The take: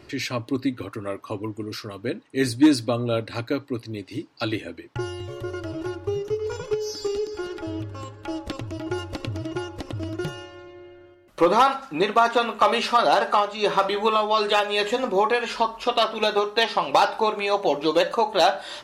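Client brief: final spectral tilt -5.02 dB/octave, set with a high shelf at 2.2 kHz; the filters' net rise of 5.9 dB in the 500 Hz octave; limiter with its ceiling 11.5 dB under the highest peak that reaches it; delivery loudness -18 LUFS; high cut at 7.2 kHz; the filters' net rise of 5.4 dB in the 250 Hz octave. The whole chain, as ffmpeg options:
-af "lowpass=7200,equalizer=f=250:t=o:g=4.5,equalizer=f=500:t=o:g=6.5,highshelf=f=2200:g=-6,volume=2.24,alimiter=limit=0.473:level=0:latency=1"

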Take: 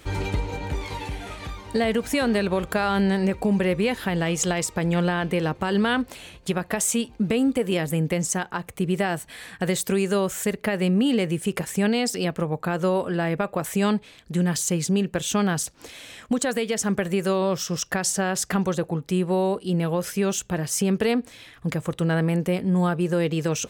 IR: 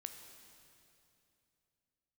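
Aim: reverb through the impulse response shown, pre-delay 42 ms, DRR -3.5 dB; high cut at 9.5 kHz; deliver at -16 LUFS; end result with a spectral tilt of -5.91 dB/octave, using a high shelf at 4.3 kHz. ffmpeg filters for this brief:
-filter_complex "[0:a]lowpass=9500,highshelf=f=4300:g=-7.5,asplit=2[s0][s1];[1:a]atrim=start_sample=2205,adelay=42[s2];[s1][s2]afir=irnorm=-1:irlink=0,volume=2.37[s3];[s0][s3]amix=inputs=2:normalize=0,volume=1.58"

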